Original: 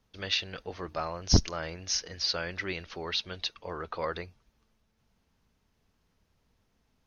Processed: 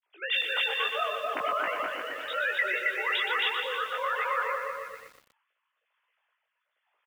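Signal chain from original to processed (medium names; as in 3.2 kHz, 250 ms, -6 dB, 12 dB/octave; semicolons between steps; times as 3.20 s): formants replaced by sine waves; chorus 0.88 Hz, delay 16 ms, depth 6.7 ms; on a send: bouncing-ball echo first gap 270 ms, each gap 0.75×, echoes 5; on the sum: rotary cabinet horn 1.1 Hz; in parallel at +3 dB: compressor with a negative ratio -36 dBFS, ratio -0.5; on the sum: high-pass 930 Hz 12 dB/octave; treble shelf 3 kHz -5.5 dB; bit-crushed delay 121 ms, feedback 55%, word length 9-bit, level -6.5 dB; trim +4 dB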